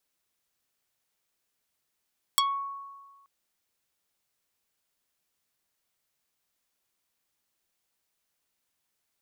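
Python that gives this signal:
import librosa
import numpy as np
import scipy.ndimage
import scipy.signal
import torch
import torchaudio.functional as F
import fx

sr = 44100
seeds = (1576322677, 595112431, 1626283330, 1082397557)

y = fx.pluck(sr, length_s=0.88, note=85, decay_s=1.46, pick=0.47, brightness='dark')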